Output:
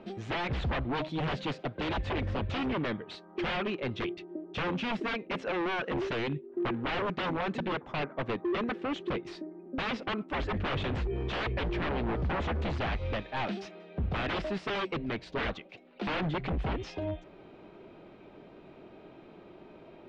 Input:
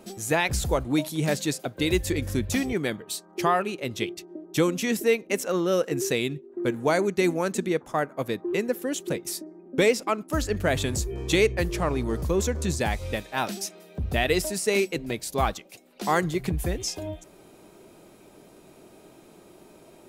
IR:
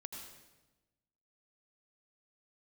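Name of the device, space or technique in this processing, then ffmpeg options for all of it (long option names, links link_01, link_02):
synthesiser wavefolder: -af "aeval=exprs='0.0501*(abs(mod(val(0)/0.0501+3,4)-2)-1)':channel_layout=same,lowpass=frequency=3300:width=0.5412,lowpass=frequency=3300:width=1.3066"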